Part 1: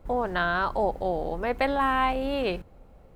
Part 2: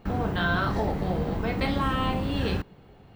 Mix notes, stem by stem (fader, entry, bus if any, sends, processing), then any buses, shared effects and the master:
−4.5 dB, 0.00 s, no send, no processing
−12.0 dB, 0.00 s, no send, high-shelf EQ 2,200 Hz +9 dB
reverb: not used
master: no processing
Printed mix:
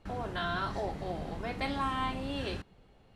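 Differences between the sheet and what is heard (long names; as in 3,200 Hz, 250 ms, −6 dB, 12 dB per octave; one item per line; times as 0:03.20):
stem 1 −4.5 dB → −12.0 dB
master: extra low-pass filter 11,000 Hz 24 dB per octave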